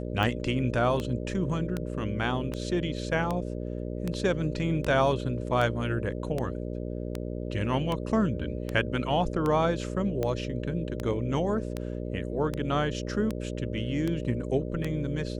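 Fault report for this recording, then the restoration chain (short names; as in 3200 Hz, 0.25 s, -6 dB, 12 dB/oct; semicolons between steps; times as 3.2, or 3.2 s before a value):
buzz 60 Hz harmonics 10 -34 dBFS
tick 78 rpm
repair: de-click; de-hum 60 Hz, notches 10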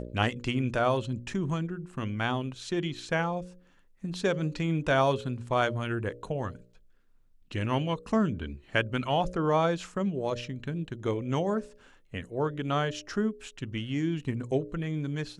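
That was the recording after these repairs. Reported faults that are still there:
none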